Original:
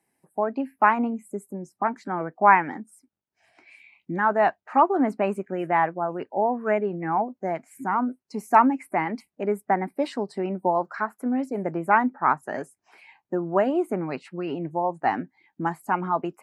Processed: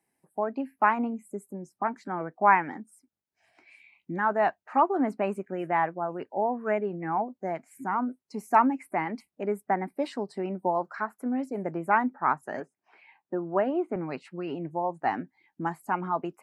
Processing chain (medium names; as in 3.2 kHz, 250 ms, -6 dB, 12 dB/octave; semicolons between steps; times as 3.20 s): 12.60–13.96 s: band-pass 160–3000 Hz; trim -4 dB